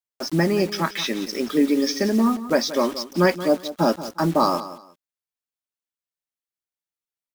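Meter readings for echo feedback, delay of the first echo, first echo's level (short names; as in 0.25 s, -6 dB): 22%, 0.178 s, -14.0 dB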